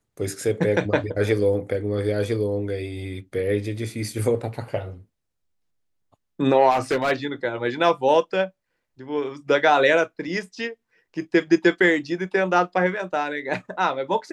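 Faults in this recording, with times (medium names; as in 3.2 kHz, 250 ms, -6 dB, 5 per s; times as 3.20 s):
6.70–7.12 s: clipped -17.5 dBFS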